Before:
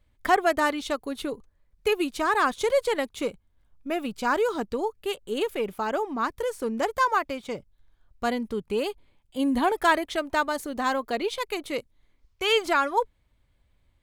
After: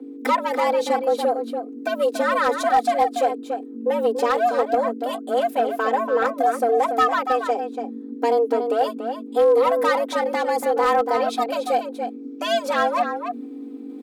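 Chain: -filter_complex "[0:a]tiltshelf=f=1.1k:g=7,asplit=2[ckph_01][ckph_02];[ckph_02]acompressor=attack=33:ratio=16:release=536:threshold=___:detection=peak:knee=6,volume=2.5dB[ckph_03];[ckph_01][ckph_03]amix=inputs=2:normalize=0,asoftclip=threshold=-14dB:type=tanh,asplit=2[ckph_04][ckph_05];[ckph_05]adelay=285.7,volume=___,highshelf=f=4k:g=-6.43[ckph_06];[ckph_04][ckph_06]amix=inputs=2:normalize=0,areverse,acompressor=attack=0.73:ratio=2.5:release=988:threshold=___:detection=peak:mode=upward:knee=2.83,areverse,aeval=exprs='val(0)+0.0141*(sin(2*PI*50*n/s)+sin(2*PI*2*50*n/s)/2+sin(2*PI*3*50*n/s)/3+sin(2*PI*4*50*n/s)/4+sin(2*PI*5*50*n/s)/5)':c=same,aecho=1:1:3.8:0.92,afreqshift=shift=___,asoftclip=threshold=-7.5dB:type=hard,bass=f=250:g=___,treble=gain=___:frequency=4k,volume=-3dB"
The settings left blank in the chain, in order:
-26dB, -7dB, -31dB, 230, 4, 5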